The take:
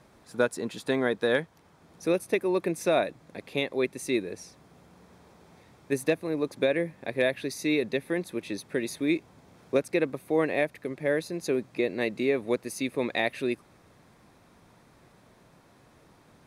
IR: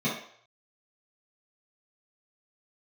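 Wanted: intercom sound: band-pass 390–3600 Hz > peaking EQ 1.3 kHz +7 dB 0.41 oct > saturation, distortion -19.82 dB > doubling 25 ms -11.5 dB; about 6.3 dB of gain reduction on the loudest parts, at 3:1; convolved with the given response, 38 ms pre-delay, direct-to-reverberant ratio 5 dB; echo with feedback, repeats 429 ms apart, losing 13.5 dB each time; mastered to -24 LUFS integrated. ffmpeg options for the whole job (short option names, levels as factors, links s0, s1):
-filter_complex "[0:a]acompressor=threshold=0.0398:ratio=3,aecho=1:1:429|858:0.211|0.0444,asplit=2[s0][s1];[1:a]atrim=start_sample=2205,adelay=38[s2];[s1][s2]afir=irnorm=-1:irlink=0,volume=0.168[s3];[s0][s3]amix=inputs=2:normalize=0,highpass=390,lowpass=3600,equalizer=f=1300:t=o:w=0.41:g=7,asoftclip=threshold=0.0794,asplit=2[s4][s5];[s5]adelay=25,volume=0.266[s6];[s4][s6]amix=inputs=2:normalize=0,volume=3.35"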